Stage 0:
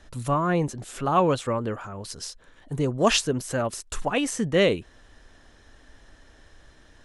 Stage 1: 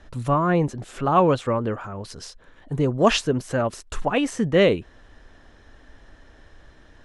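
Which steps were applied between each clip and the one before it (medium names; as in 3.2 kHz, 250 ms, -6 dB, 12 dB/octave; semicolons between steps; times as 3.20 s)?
low-pass 2.7 kHz 6 dB/octave; trim +3.5 dB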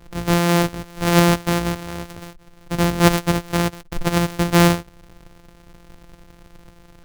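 sorted samples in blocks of 256 samples; trim +3 dB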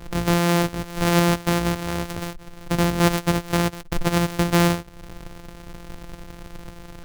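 compression 2:1, threshold -32 dBFS, peak gain reduction 13 dB; trim +7.5 dB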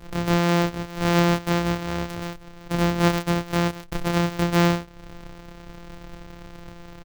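doubling 29 ms -2.5 dB; trim -5.5 dB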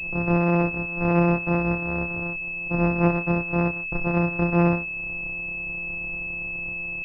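level-controlled noise filter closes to 840 Hz, open at -15 dBFS; class-D stage that switches slowly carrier 2.6 kHz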